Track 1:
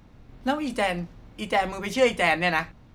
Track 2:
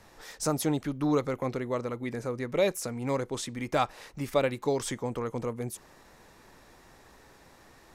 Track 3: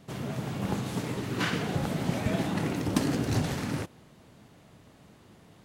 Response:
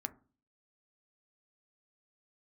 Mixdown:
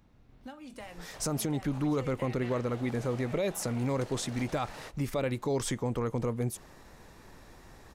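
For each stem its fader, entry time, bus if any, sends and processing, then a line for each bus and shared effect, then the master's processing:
−10.5 dB, 0.00 s, bus A, no send, high-shelf EQ 9,000 Hz +9 dB
0.0 dB, 0.80 s, no bus, no send, low-shelf EQ 200 Hz +8 dB
−7.5 dB, 1.05 s, bus A, no send, low shelf with overshoot 420 Hz −11.5 dB, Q 1.5
bus A: 0.0 dB, high-shelf EQ 9,900 Hz −5.5 dB; downward compressor 6 to 1, threshold −43 dBFS, peak gain reduction 16.5 dB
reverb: not used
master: brickwall limiter −22 dBFS, peak gain reduction 9.5 dB

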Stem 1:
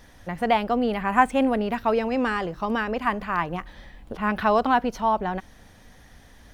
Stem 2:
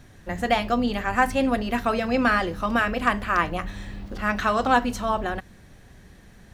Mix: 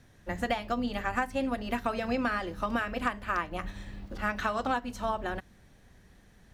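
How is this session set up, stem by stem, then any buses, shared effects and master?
−16.5 dB, 0.00 s, no send, no processing
+2.5 dB, 0.00 s, no send, expander for the loud parts 1.5 to 1, over −39 dBFS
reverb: not used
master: downward compressor 6 to 1, threshold −27 dBFS, peak gain reduction 14.5 dB

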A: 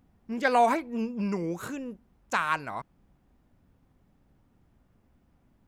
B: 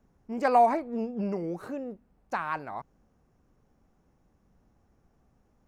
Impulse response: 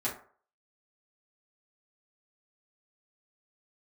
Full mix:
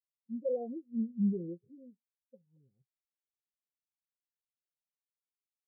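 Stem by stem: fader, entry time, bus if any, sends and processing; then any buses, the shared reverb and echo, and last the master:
+2.5 dB, 0.00 s, send −18 dB, Chebyshev low-pass with heavy ripple 550 Hz, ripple 6 dB; wave folding −28 dBFS
−18.0 dB, 12 ms, no send, no processing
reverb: on, RT60 0.45 s, pre-delay 4 ms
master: Butterworth low-pass 880 Hz; every bin expanded away from the loudest bin 2.5 to 1

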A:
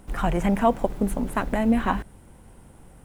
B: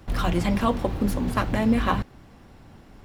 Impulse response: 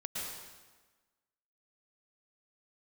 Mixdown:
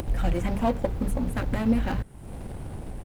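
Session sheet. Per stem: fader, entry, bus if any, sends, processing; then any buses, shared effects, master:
−4.5 dB, 0.00 s, no send, auto-filter notch saw down 1.8 Hz 520–1,800 Hz
−1.5 dB, 0.9 ms, no send, running median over 41 samples; octave-band graphic EQ 250/2,000/8,000 Hz −7/−3/−7 dB; upward compression, threshold −33 dBFS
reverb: not used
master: upward compression, threshold −26 dBFS

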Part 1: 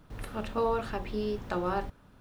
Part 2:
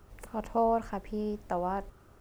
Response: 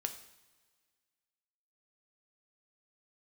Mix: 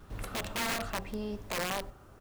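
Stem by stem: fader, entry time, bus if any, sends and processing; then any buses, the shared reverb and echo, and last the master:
+0.5 dB, 0.00 s, send −18 dB, automatic ducking −17 dB, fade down 1.95 s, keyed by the second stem
−1.0 dB, 4.8 ms, send −6.5 dB, brickwall limiter −26.5 dBFS, peak gain reduction 10 dB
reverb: on, pre-delay 3 ms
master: wrap-around overflow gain 27 dB

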